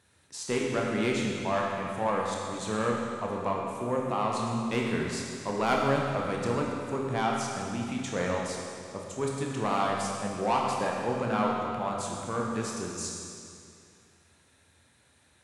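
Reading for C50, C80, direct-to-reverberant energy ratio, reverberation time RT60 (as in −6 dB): 0.0 dB, 1.5 dB, −2.0 dB, 2.5 s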